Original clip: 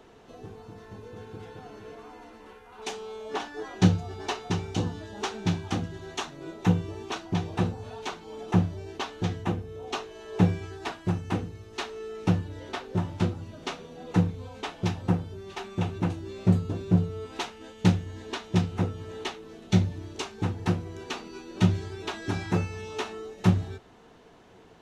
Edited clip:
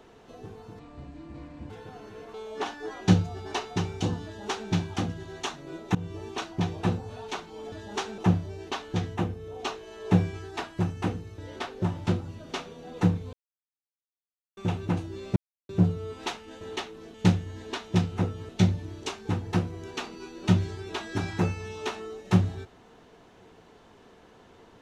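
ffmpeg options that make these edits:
-filter_complex "[0:a]asplit=15[s0][s1][s2][s3][s4][s5][s6][s7][s8][s9][s10][s11][s12][s13][s14];[s0]atrim=end=0.794[s15];[s1]atrim=start=0.79:end=1.4,asetpts=PTS-STARTPTS,asetrate=29547,aresample=44100[s16];[s2]atrim=start=1.396:end=2.042[s17];[s3]atrim=start=3.078:end=6.69,asetpts=PTS-STARTPTS,afade=t=out:st=3.608:d=0.004:c=hsin:silence=0.0707946[s18];[s4]atrim=start=6.69:end=8.462,asetpts=PTS-STARTPTS,afade=t=in:d=0.33:c=qsin:silence=0.0707946[s19];[s5]atrim=start=4.978:end=5.442[s20];[s6]atrim=start=8.458:end=11.662[s21];[s7]atrim=start=12.508:end=14.46,asetpts=PTS-STARTPTS,afade=t=out:st=1.948:d=0.004:c=hsin[s22];[s8]atrim=start=14.46:end=15.7,asetpts=PTS-STARTPTS,volume=0[s23];[s9]atrim=start=15.7:end=16.49,asetpts=PTS-STARTPTS,afade=t=in:d=0.004:c=hsin,afade=t=out:st=0.786:d=0.004:c=hsin[s24];[s10]atrim=start=16.49:end=16.82,asetpts=PTS-STARTPTS,volume=0[s25];[s11]atrim=start=16.82:end=17.742,asetpts=PTS-STARTPTS,afade=t=in:d=0.004:c=hsin[s26];[s12]atrim=start=19.088:end=19.622[s27];[s13]atrim=start=17.738:end=19.092[s28];[s14]atrim=start=19.618[s29];[s15][s16]acrossfade=d=0.004:c1=hsin:c2=hsin[s30];[s30][s17]acrossfade=d=0.004:c1=hsin:c2=hsin[s31];[s18][s19]concat=n=2:v=0:a=1[s32];[s31][s32]acrossfade=d=0.004:c1=hsin:c2=hsin[s33];[s33][s20]acrossfade=d=0.004:c1=hsin:c2=hsin[s34];[s34][s21]acrossfade=d=0.004:c1=hsin:c2=hsin[s35];[s22][s23][s24][s25][s26]concat=n=5:v=0:a=1[s36];[s35][s36]acrossfade=d=0.004:c1=hsin:c2=hsin[s37];[s37][s27]acrossfade=d=0.004:c1=hsin:c2=hsin[s38];[s38][s28]acrossfade=d=0.004:c1=hsin:c2=hsin[s39];[s39][s29]acrossfade=d=0.004:c1=hsin:c2=hsin"

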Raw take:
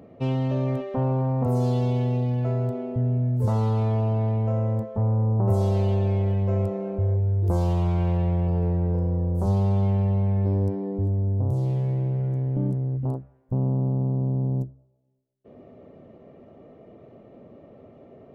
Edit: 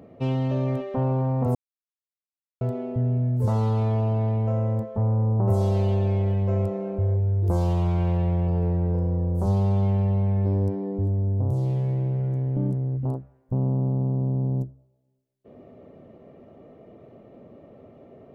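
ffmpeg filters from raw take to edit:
-filter_complex "[0:a]asplit=3[s0][s1][s2];[s0]atrim=end=1.55,asetpts=PTS-STARTPTS,afade=t=out:st=1.546:d=0.004:c=hsin[s3];[s1]atrim=start=1.55:end=2.61,asetpts=PTS-STARTPTS,volume=0[s4];[s2]atrim=start=2.61,asetpts=PTS-STARTPTS,afade=t=in:d=0.004:c=hsin[s5];[s3][s4][s5]concat=n=3:v=0:a=1"

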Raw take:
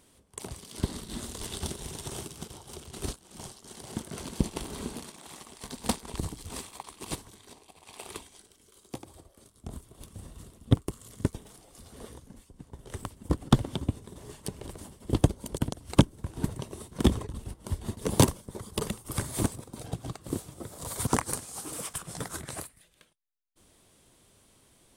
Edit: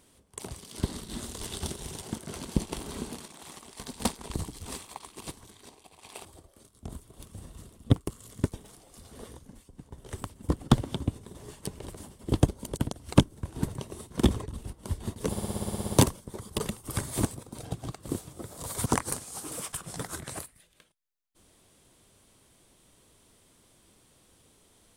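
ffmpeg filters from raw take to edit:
-filter_complex "[0:a]asplit=14[s0][s1][s2][s3][s4][s5][s6][s7][s8][s9][s10][s11][s12][s13];[s0]atrim=end=2.022[s14];[s1]atrim=start=3.858:end=7.21,asetpts=PTS-STARTPTS,afade=t=out:st=3.072:d=0.28:silence=0.375837[s15];[s2]atrim=start=7.21:end=8.092,asetpts=PTS-STARTPTS,afade=t=in:d=0.004:c=hsin:silence=0.375837[s16];[s3]atrim=start=9.058:end=18.182[s17];[s4]atrim=start=18.118:end=18.182[s18];[s5]atrim=start=18.118:end=18.182[s19];[s6]atrim=start=18.118:end=18.182[s20];[s7]atrim=start=18.118:end=18.182[s21];[s8]atrim=start=18.118:end=18.182[s22];[s9]atrim=start=18.118:end=18.182[s23];[s10]atrim=start=18.118:end=18.182[s24];[s11]atrim=start=18.118:end=18.182[s25];[s12]atrim=start=18.118:end=18.182[s26];[s13]atrim=start=18.118[s27];[s15][s16]concat=n=2:v=0:a=1[s28];[s14][s28]acrossfade=d=0.004:c1=hsin:c2=hsin[s29];[s29][s17]acrossfade=d=0.004:c1=hsin:c2=hsin[s30];[s30][s18]acrossfade=d=0.004:c1=hsin:c2=hsin[s31];[s31][s19]acrossfade=d=0.004:c1=hsin:c2=hsin[s32];[s32][s20]acrossfade=d=0.004:c1=hsin:c2=hsin[s33];[s33][s21]acrossfade=d=0.004:c1=hsin:c2=hsin[s34];[s34][s22]acrossfade=d=0.004:c1=hsin:c2=hsin[s35];[s35][s23]acrossfade=d=0.004:c1=hsin:c2=hsin[s36];[s36][s24]acrossfade=d=0.004:c1=hsin:c2=hsin[s37];[s37][s25]acrossfade=d=0.004:c1=hsin:c2=hsin[s38];[s38][s26]acrossfade=d=0.004:c1=hsin:c2=hsin[s39];[s39][s27]acrossfade=d=0.004:c1=hsin:c2=hsin"

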